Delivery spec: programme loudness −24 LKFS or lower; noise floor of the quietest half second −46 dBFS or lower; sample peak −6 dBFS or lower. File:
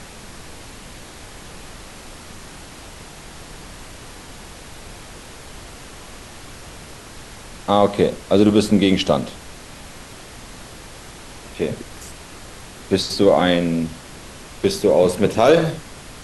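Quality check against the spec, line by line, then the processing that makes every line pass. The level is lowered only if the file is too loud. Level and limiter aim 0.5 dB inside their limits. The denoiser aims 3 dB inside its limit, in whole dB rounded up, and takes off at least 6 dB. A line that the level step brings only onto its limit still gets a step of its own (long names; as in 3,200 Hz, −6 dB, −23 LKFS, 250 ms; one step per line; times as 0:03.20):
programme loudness −18.0 LKFS: out of spec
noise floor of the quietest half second −38 dBFS: out of spec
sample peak −3.0 dBFS: out of spec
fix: broadband denoise 6 dB, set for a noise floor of −38 dBFS
level −6.5 dB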